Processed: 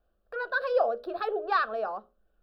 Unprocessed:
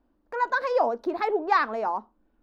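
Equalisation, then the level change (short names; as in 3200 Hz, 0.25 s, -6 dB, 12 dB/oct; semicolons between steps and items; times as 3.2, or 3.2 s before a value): notches 60/120/180/240/300/360/420/480/540/600 Hz; fixed phaser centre 1400 Hz, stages 8; 0.0 dB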